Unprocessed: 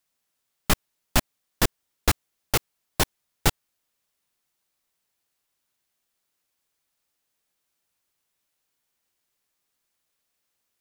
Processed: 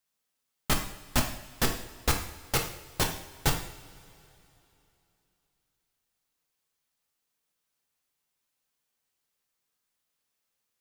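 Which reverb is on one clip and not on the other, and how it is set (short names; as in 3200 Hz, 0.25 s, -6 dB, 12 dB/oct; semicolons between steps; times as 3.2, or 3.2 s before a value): two-slope reverb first 0.59 s, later 3.1 s, from -19 dB, DRR 2 dB; gain -5.5 dB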